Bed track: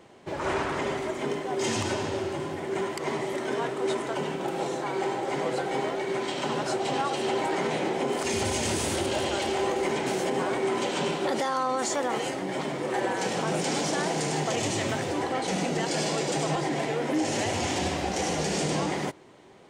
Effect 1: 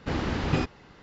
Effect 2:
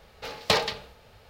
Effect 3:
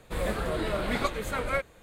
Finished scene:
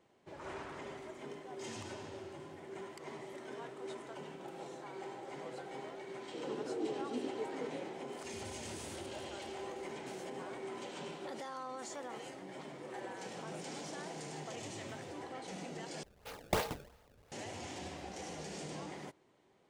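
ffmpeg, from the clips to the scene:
ffmpeg -i bed.wav -i cue0.wav -i cue1.wav -i cue2.wav -filter_complex "[0:a]volume=-17dB[link_01];[3:a]asuperpass=centerf=340:order=8:qfactor=1.5[link_02];[2:a]acrusher=samples=25:mix=1:aa=0.000001:lfo=1:lforange=40:lforate=2.9[link_03];[link_01]asplit=2[link_04][link_05];[link_04]atrim=end=16.034[link_06];[link_03]atrim=end=1.29,asetpts=PTS-STARTPTS,volume=-10.5dB[link_07];[link_05]atrim=start=17.316[link_08];[link_02]atrim=end=1.82,asetpts=PTS-STARTPTS,volume=-3dB,afade=type=in:duration=0.004:curve=hsin,afade=type=out:start_time=1.816:duration=0.004:curve=hsin,adelay=6220[link_09];[link_06][link_07]acrossfade=duration=0.004:curve1=hsin:curve2=hsin[link_10];[link_10][link_08]acrossfade=duration=0.004:curve1=hsin:curve2=hsin[link_11];[link_11][link_09]amix=inputs=2:normalize=0" out.wav

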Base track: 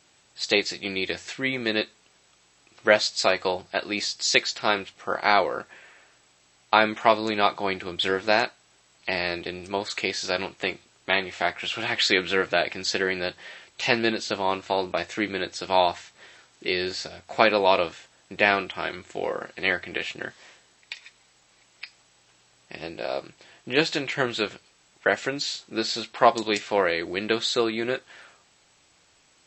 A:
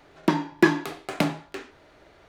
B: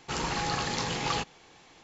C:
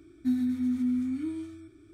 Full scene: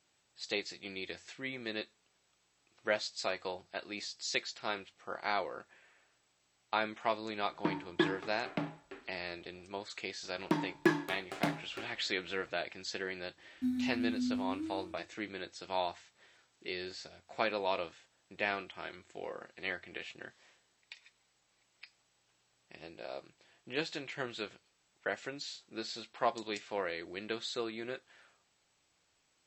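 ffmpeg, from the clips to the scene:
ffmpeg -i bed.wav -i cue0.wav -i cue1.wav -i cue2.wav -filter_complex "[1:a]asplit=2[link_01][link_02];[0:a]volume=-14dB[link_03];[link_01]lowpass=3200[link_04];[3:a]agate=range=-33dB:threshold=-47dB:ratio=3:release=100:detection=peak[link_05];[link_04]atrim=end=2.28,asetpts=PTS-STARTPTS,volume=-12.5dB,afade=type=in:duration=0.004:curve=hsin,afade=type=out:start_time=2.276:duration=0.004:curve=hsin,adelay=7370[link_06];[link_02]atrim=end=2.28,asetpts=PTS-STARTPTS,volume=-10dB,afade=type=in:duration=0.004:curve=hsin,afade=type=out:start_time=2.276:duration=0.004:curve=hsin,adelay=10230[link_07];[link_05]atrim=end=1.93,asetpts=PTS-STARTPTS,volume=-7dB,afade=type=in:duration=0.004:curve=hsin,afade=type=out:start_time=1.926:duration=0.004:curve=hsin,adelay=13370[link_08];[link_03][link_06][link_07][link_08]amix=inputs=4:normalize=0" out.wav

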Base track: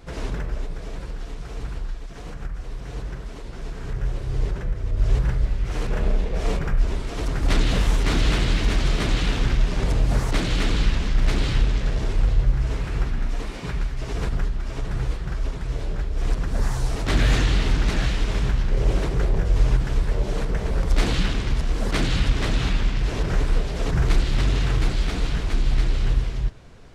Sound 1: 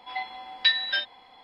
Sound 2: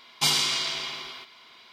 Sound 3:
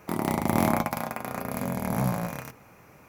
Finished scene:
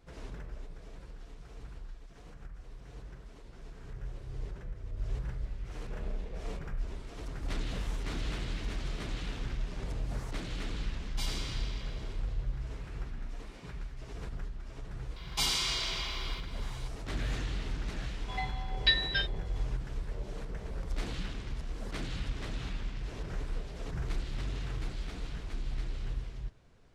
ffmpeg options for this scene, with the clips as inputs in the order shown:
ffmpeg -i bed.wav -i cue0.wav -i cue1.wav -filter_complex "[2:a]asplit=2[link_01][link_02];[0:a]volume=-15.5dB[link_03];[link_02]acompressor=threshold=-38dB:ratio=1.5:attack=0.21:release=25:knee=1:detection=peak[link_04];[link_01]atrim=end=1.72,asetpts=PTS-STARTPTS,volume=-17.5dB,afade=type=in:duration=0.004:curve=hsin,afade=type=out:start_time=1.716:duration=0.004:curve=hsin,adelay=10960[link_05];[link_04]atrim=end=1.72,asetpts=PTS-STARTPTS,afade=type=in:duration=0.004:curve=hsin,afade=type=out:start_time=1.716:duration=0.004:curve=hsin,adelay=15160[link_06];[1:a]atrim=end=1.43,asetpts=PTS-STARTPTS,volume=-4.5dB,afade=type=in:duration=0.004:curve=hsin,afade=type=out:start_time=1.426:duration=0.004:curve=hsin,adelay=18220[link_07];[link_03][link_05][link_06][link_07]amix=inputs=4:normalize=0" out.wav

